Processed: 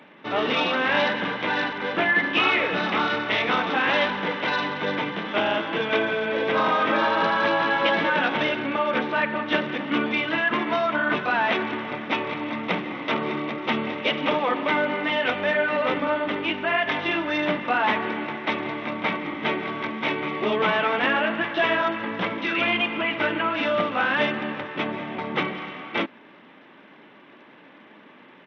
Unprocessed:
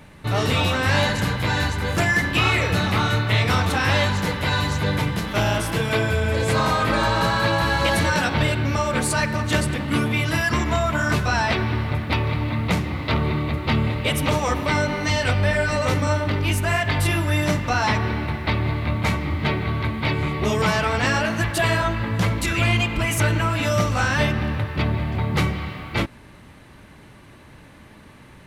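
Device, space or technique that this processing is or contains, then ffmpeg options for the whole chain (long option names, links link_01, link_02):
Bluetooth headset: -af "highpass=frequency=230:width=0.5412,highpass=frequency=230:width=1.3066,aresample=8000,aresample=44100" -ar 32000 -c:a sbc -b:a 64k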